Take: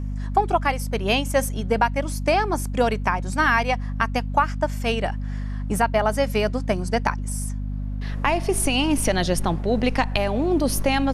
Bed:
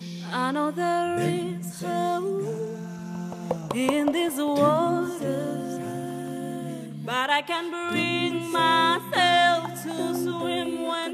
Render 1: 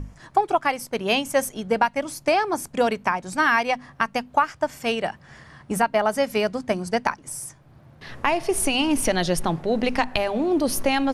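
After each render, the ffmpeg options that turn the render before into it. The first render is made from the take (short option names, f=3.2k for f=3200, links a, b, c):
-af "bandreject=f=50:t=h:w=6,bandreject=f=100:t=h:w=6,bandreject=f=150:t=h:w=6,bandreject=f=200:t=h:w=6,bandreject=f=250:t=h:w=6"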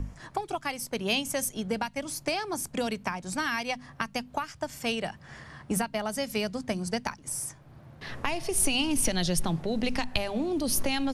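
-filter_complex "[0:a]acrossover=split=210|3000[a][b][c];[b]acompressor=threshold=-32dB:ratio=4[d];[a][d][c]amix=inputs=3:normalize=0"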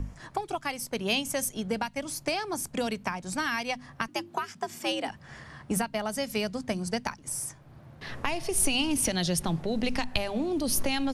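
-filter_complex "[0:a]asettb=1/sr,asplit=3[a][b][c];[a]atrim=end=4.084[d];[b]atrim=start=4.08:end=5.09,asetpts=PTS-STARTPTS,afade=t=in:d=0.004:c=qsin,afade=t=out:st=1.006:d=0.004:c=qsin,afreqshift=94[e];[c]atrim=start=5.086[f];[d][e]acrossfade=d=0.004:c1=hsin:c2=qsin[g];[g][f]acrossfade=d=0.004:c1=qsin:c2=hsin,asettb=1/sr,asplit=3[h][i][j];[h]atrim=end=8.964[k];[i]atrim=start=8.96:end=9.47,asetpts=PTS-STARTPTS,afade=t=in:d=0.004:c=qsin,afade=t=out:st=0.506:d=0.004:c=qsin,highpass=41[l];[j]atrim=start=9.466[m];[k][l]acrossfade=d=0.004:c1=hsin:c2=qsin[n];[n][m]acrossfade=d=0.004:c1=qsin:c2=hsin"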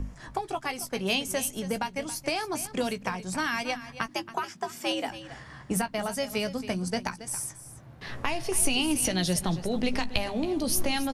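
-filter_complex "[0:a]asplit=2[a][b];[b]adelay=16,volume=-10dB[c];[a][c]amix=inputs=2:normalize=0,aecho=1:1:276:0.2"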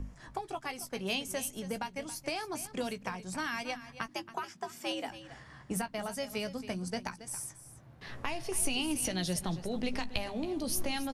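-af "volume=-6.5dB"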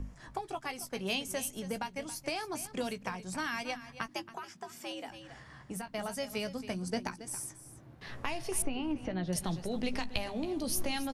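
-filter_complex "[0:a]asettb=1/sr,asplit=3[a][b][c];[a]atrim=end=4.284[d];[b]atrim=start=4.28:end=5.87,asetpts=PTS-STARTPTS,afade=t=in:d=0.004:c=qsin,afade=t=out:st=1.586:d=0.004:c=qsin,acompressor=threshold=-46dB:ratio=1.5:attack=3.2:release=140:knee=1:detection=peak[e];[c]atrim=start=5.866[f];[d][e]acrossfade=d=0.004:c1=hsin:c2=qsin[g];[g][f]acrossfade=d=0.004:c1=qsin:c2=hsin,asettb=1/sr,asplit=3[h][i][j];[h]atrim=end=6.894[k];[i]atrim=start=6.89:end=7.95,asetpts=PTS-STARTPTS,afade=t=in:d=0.004:c=qsin,afade=t=out:st=1.056:d=0.004:c=qsin,equalizer=f=320:t=o:w=0.77:g=8.5[l];[j]atrim=start=7.946[m];[k][l]acrossfade=d=0.004:c1=hsin:c2=qsin[n];[n][m]acrossfade=d=0.004:c1=qsin:c2=hsin,asettb=1/sr,asplit=3[o][p][q];[o]atrim=end=8.624[r];[p]atrim=start=8.62:end=9.33,asetpts=PTS-STARTPTS,afade=t=in:d=0.004:c=qsin,afade=t=out:st=0.706:d=0.004:c=qsin,lowpass=1.6k[s];[q]atrim=start=9.326[t];[r][s]acrossfade=d=0.004:c1=hsin:c2=qsin[u];[u][t]acrossfade=d=0.004:c1=qsin:c2=hsin"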